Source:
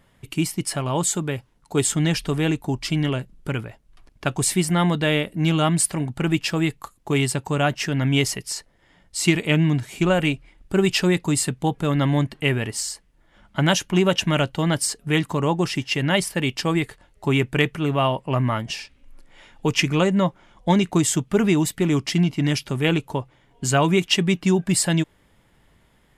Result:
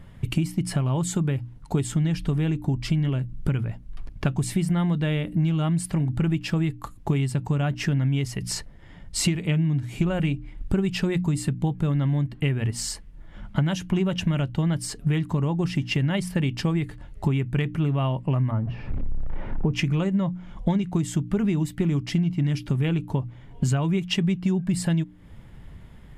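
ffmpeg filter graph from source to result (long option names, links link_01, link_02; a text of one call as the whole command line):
ffmpeg -i in.wav -filter_complex "[0:a]asettb=1/sr,asplit=3[link_01][link_02][link_03];[link_01]atrim=end=18.514[link_04];[link_02]atrim=start=18.51:end=19.73,asetpts=PTS-STARTPTS,afade=type=in:duration=0.004:curve=qsin,afade=type=out:start_time=1.216:duration=0.004:curve=qsin,aeval=exprs='val(0)+0.5*0.0188*sgn(val(0))':channel_layout=same,lowpass=1000[link_05];[link_03]atrim=start=19.726[link_06];[link_04][link_05]acrossfade=duration=0.004:curve1=hsin:curve2=qsin[link_07];[link_07][link_06]acrossfade=duration=0.004:curve1=qsin:curve2=hsin,bass=frequency=250:gain=13,treble=frequency=4000:gain=-5,bandreject=frequency=60:width_type=h:width=6,bandreject=frequency=120:width_type=h:width=6,bandreject=frequency=180:width_type=h:width=6,bandreject=frequency=240:width_type=h:width=6,bandreject=frequency=300:width_type=h:width=6,acompressor=threshold=-25dB:ratio=10,volume=4.5dB" out.wav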